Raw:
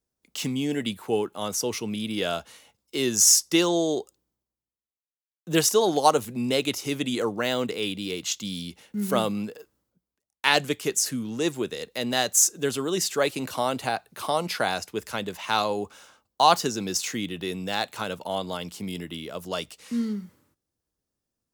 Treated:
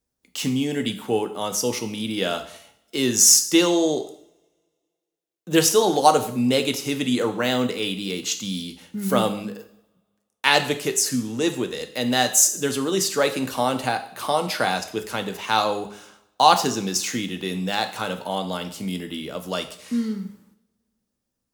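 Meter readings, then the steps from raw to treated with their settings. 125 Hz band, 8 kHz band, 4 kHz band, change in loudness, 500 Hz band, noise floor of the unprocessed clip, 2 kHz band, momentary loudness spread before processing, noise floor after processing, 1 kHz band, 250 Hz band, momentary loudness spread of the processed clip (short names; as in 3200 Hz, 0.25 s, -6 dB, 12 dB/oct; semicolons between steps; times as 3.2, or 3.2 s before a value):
+3.5 dB, +3.5 dB, +3.5 dB, +3.5 dB, +3.0 dB, under -85 dBFS, +3.5 dB, 13 LU, -80 dBFS, +4.0 dB, +4.5 dB, 13 LU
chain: two-slope reverb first 0.6 s, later 1.9 s, from -28 dB, DRR 6.5 dB; gain +2.5 dB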